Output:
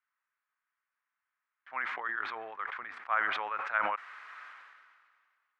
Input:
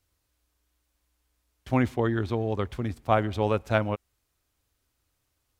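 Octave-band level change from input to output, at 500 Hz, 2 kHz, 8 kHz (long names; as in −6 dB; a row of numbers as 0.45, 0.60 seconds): −17.5 dB, +3.5 dB, can't be measured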